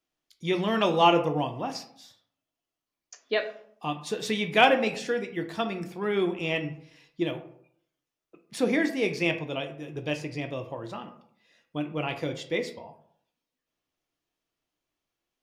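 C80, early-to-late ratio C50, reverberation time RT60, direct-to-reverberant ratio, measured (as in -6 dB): 15.0 dB, 11.0 dB, 0.65 s, 5.0 dB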